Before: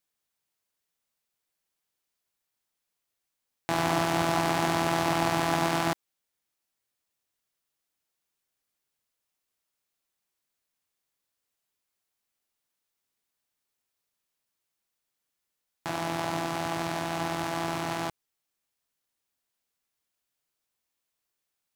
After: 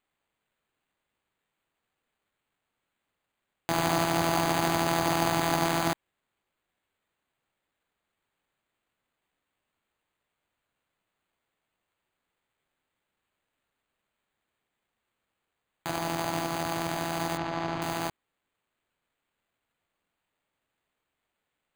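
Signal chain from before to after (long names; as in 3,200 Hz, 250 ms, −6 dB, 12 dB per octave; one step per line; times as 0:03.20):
bad sample-rate conversion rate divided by 8×, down none, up hold
0:17.37–0:17.82: high-frequency loss of the air 160 metres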